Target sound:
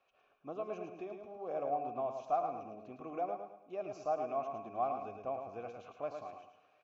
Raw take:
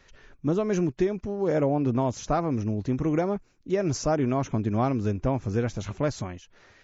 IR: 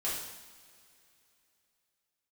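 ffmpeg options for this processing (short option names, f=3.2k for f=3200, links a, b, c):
-filter_complex "[0:a]asplit=3[a][b][c];[a]bandpass=f=730:t=q:w=8,volume=0dB[d];[b]bandpass=f=1.09k:t=q:w=8,volume=-6dB[e];[c]bandpass=f=2.44k:t=q:w=8,volume=-9dB[f];[d][e][f]amix=inputs=3:normalize=0,aecho=1:1:108|216|324|432:0.501|0.175|0.0614|0.0215,asplit=2[g][h];[1:a]atrim=start_sample=2205,adelay=60[i];[h][i]afir=irnorm=-1:irlink=0,volume=-19.5dB[j];[g][j]amix=inputs=2:normalize=0,volume=-2dB"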